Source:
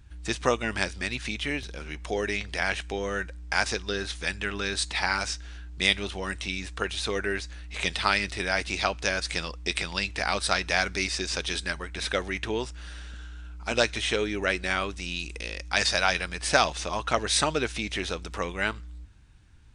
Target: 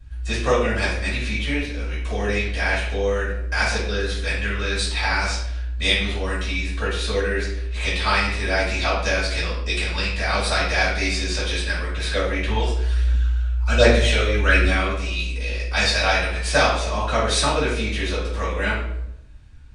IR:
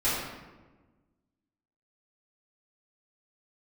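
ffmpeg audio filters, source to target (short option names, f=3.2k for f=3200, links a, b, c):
-filter_complex "[0:a]asplit=3[a][b][c];[a]afade=t=out:st=12.47:d=0.02[d];[b]aphaser=in_gain=1:out_gain=1:delay=1.8:decay=0.65:speed=1.3:type=triangular,afade=t=in:st=12.47:d=0.02,afade=t=out:st=14.68:d=0.02[e];[c]afade=t=in:st=14.68:d=0.02[f];[d][e][f]amix=inputs=3:normalize=0[g];[1:a]atrim=start_sample=2205,asetrate=83790,aresample=44100[h];[g][h]afir=irnorm=-1:irlink=0,volume=-2dB"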